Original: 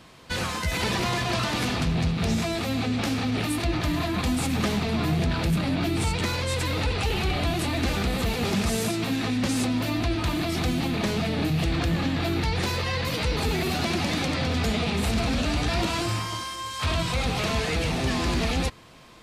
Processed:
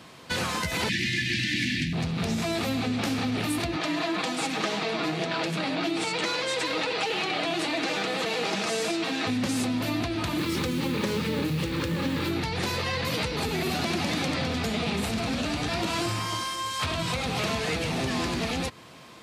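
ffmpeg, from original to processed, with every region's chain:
ffmpeg -i in.wav -filter_complex "[0:a]asettb=1/sr,asplit=3[link_01][link_02][link_03];[link_01]atrim=end=0.894[link_04];[link_02]atrim=start=0.89:end=1.93,asetpts=PTS-STARTPTS,afade=type=in:duration=0.004:curve=qsin,afade=type=out:start_time=1.036:duration=0.004:curve=qsin,asuperstop=centerf=770:order=20:qfactor=0.55,acrossover=split=8100[link_05][link_06];[link_06]acompressor=threshold=-53dB:ratio=4:attack=1:release=60[link_07];[link_05][link_07]amix=inputs=2:normalize=0,equalizer=frequency=1200:width=0.64:gain=11.5[link_08];[link_03]atrim=start=1.926[link_09];[link_04][link_08]acrossfade=duration=0.004:curve1=hsin:curve2=qsin[link_10];[link_10][link_09]acrossfade=duration=0.004:curve1=qsin:curve2=hsin,asettb=1/sr,asplit=3[link_11][link_12][link_13];[link_11]atrim=end=3.764[link_14];[link_12]atrim=start=3.76:end=9.27,asetpts=PTS-STARTPTS,afade=type=in:duration=0.004:curve=qsin,afade=type=out:start_time=5.506:duration=0.004:curve=qsin,highpass=340,lowpass=7000,aecho=1:1:6.3:0.46,atrim=end_sample=242991[link_15];[link_13]atrim=start=9.266[link_16];[link_14][link_15]acrossfade=duration=0.004:curve1=hsin:curve2=qsin[link_17];[link_17][link_16]acrossfade=duration=0.004:curve1=qsin:curve2=hsin,asettb=1/sr,asplit=3[link_18][link_19][link_20];[link_18]atrim=end=10.384[link_21];[link_19]atrim=start=10.38:end=12.31,asetpts=PTS-STARTPTS,afade=type=in:duration=0.004:curve=qsin,afade=type=out:start_time=1.926:duration=0.004:curve=qsin,equalizer=frequency=590:width_type=o:width=0.77:gain=8,acrusher=bits=8:dc=4:mix=0:aa=0.000001,asuperstop=centerf=690:order=4:qfactor=2.5[link_22];[link_20]atrim=start=12.306[link_23];[link_21][link_22]acrossfade=duration=0.004:curve1=hsin:curve2=qsin[link_24];[link_24][link_23]acrossfade=duration=0.004:curve1=qsin:curve2=hsin,acompressor=threshold=-26dB:ratio=6,highpass=110,volume=2.5dB" out.wav

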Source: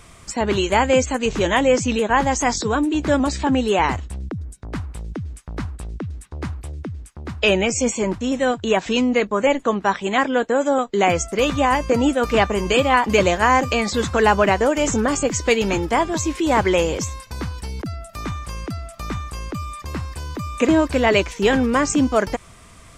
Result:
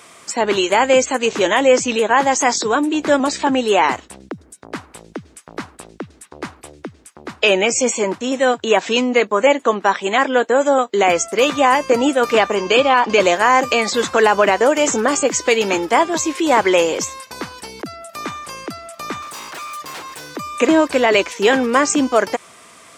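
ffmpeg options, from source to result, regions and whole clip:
ffmpeg -i in.wav -filter_complex "[0:a]asettb=1/sr,asplit=3[link_01][link_02][link_03];[link_01]atrim=end=12.554[link_04];[link_02]atrim=start=12.55:end=13.2,asetpts=PTS-STARTPTS,afade=type=in:duration=0.004:curve=qsin,afade=type=out:start_time=0.646:duration=0.004:curve=qsin,lowpass=frequency=6300:width=0.5412,lowpass=frequency=6300:width=1.3066,bandreject=frequency=2000:width=11[link_05];[link_03]atrim=start=13.196[link_06];[link_04][link_05]acrossfade=duration=0.004:curve1=hsin:curve2=qsin[link_07];[link_07][link_06]acrossfade=duration=0.004:curve1=qsin:curve2=hsin,asettb=1/sr,asplit=3[link_08][link_09][link_10];[link_08]atrim=end=19.224[link_11];[link_09]atrim=start=19.22:end=20.36,asetpts=PTS-STARTPTS,afade=type=in:duration=0.004:curve=qsin,afade=type=out:start_time=1.136:duration=0.004:curve=qsin,aecho=1:1:6.5:0.77,atrim=end_sample=50274,aeval=exprs='0.0316*(abs(mod(val(0)/0.0316+3,4)-2)-1)':channel_layout=same[link_12];[link_10]atrim=start=20.356[link_13];[link_11][link_12]acrossfade=duration=0.004:curve1=hsin:curve2=qsin[link_14];[link_14][link_13]acrossfade=duration=0.004:curve1=qsin:curve2=hsin,highpass=320,alimiter=level_in=6dB:limit=-1dB:release=50:level=0:latency=1,volume=-1dB" out.wav

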